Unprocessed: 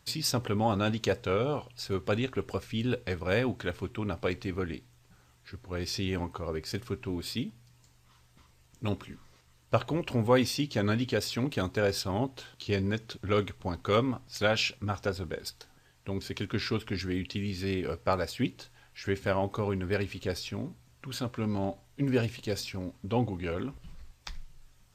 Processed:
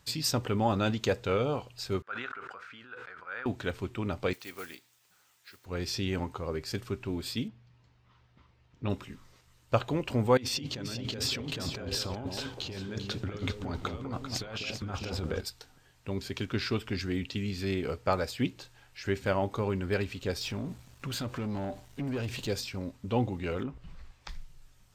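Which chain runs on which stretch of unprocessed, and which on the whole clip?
2.02–3.46 s: block-companded coder 7-bit + band-pass filter 1.4 kHz, Q 5.8 + decay stretcher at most 22 dB/s
4.33–5.66 s: block-companded coder 5-bit + high-pass 1.3 kHz 6 dB/octave + treble shelf 12 kHz +8.5 dB
7.48–8.90 s: high-pass 42 Hz + distance through air 230 m
10.37–15.41 s: treble shelf 8.8 kHz -7 dB + compressor with a negative ratio -37 dBFS + echo whose repeats swap between lows and highs 197 ms, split 860 Hz, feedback 52%, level -3 dB
20.41–22.47 s: compression 2.5:1, threshold -39 dBFS + waveshaping leveller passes 2
23.63–24.29 s: low-pass 1.6 kHz 6 dB/octave + tape noise reduction on one side only encoder only
whole clip: none

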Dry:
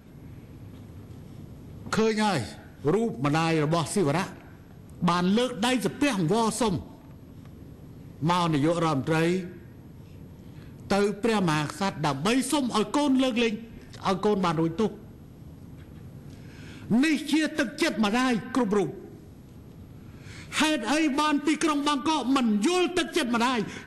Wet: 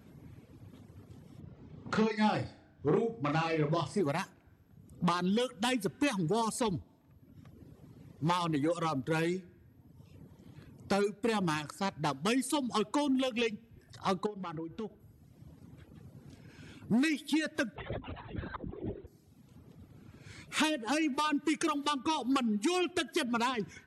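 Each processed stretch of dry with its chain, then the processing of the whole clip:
1.40–4.01 s: distance through air 110 m + flutter echo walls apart 5.6 m, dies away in 0.46 s
14.26–15.00 s: treble shelf 5.3 kHz -10 dB + compression 12:1, threshold -28 dBFS
17.76–19.07 s: compressor with a negative ratio -32 dBFS + careless resampling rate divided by 8×, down none, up hold + LPC vocoder at 8 kHz whisper
whole clip: reverb removal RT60 1.3 s; high-pass 61 Hz; trim -5.5 dB

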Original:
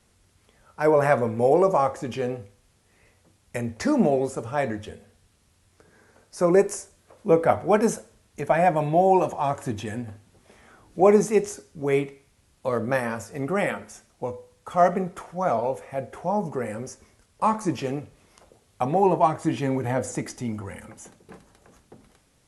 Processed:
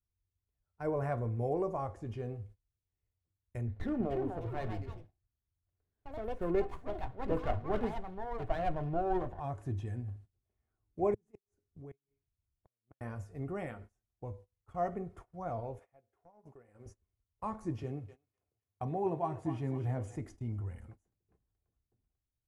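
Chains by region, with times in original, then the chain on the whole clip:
3.67–9.40 s: resonant high shelf 2.8 kHz -10 dB, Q 3 + ever faster or slower copies 328 ms, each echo +4 st, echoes 2, each echo -6 dB + sliding maximum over 9 samples
11.14–13.01 s: compression 2:1, threshold -42 dBFS + inverted gate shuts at -26 dBFS, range -30 dB + peaking EQ 180 Hz +3.5 dB 0.58 oct
15.79–16.86 s: high-pass 480 Hz 6 dB/octave + compression 8:1, threshold -34 dBFS
17.83–20.16 s: high-pass 82 Hz 24 dB/octave + thinning echo 252 ms, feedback 56%, high-pass 1.1 kHz, level -7 dB
whole clip: FFT filter 110 Hz 0 dB, 200 Hz -12 dB, 6.1 kHz -24 dB; gate -51 dBFS, range -22 dB; comb 2.8 ms, depth 30%

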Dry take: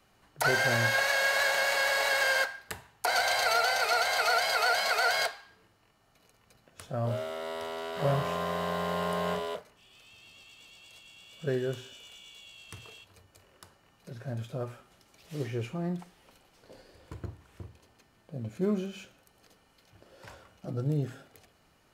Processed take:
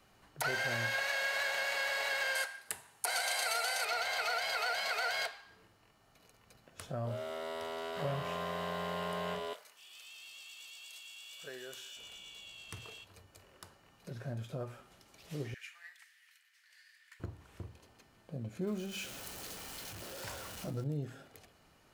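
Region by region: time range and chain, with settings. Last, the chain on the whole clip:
2.35–3.85 s: high-pass 250 Hz 6 dB/octave + peaking EQ 9.7 kHz +15 dB 0.85 oct
9.53–11.97 s: high-pass 810 Hz 6 dB/octave + tilt EQ +2.5 dB/octave + compression 2:1, threshold -47 dBFS
15.54–17.20 s: ladder high-pass 1.7 kHz, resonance 75% + treble shelf 2.4 kHz +9.5 dB + tape noise reduction on one side only decoder only
18.67–20.84 s: jump at every zero crossing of -45 dBFS + treble shelf 3.7 kHz +8.5 dB
whole clip: dynamic bell 2.6 kHz, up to +5 dB, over -42 dBFS, Q 1.1; compression 2:1, threshold -40 dBFS

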